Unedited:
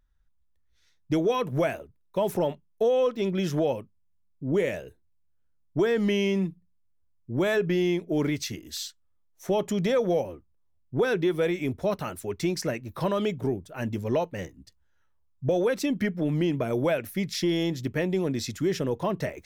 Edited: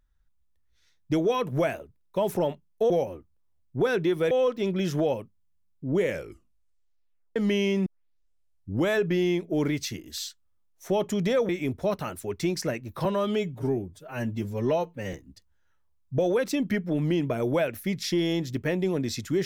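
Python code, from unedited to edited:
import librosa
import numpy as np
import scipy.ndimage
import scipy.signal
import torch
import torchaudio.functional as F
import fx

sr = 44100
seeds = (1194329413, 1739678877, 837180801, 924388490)

y = fx.edit(x, sr, fx.tape_stop(start_s=4.64, length_s=1.31),
    fx.tape_start(start_s=6.45, length_s=1.03),
    fx.move(start_s=10.08, length_s=1.41, to_s=2.9),
    fx.stretch_span(start_s=13.05, length_s=1.39, factor=1.5), tone=tone)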